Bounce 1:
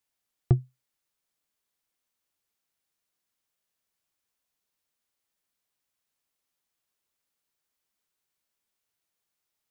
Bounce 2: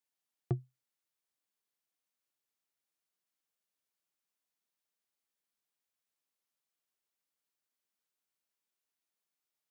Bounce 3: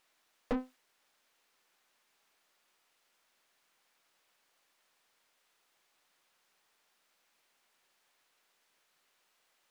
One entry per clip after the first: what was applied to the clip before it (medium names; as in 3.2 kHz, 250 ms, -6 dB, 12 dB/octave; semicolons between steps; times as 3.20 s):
high-pass 150 Hz; trim -7 dB
full-wave rectifier; overdrive pedal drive 35 dB, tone 2.2 kHz, clips at -21.5 dBFS; trim -2 dB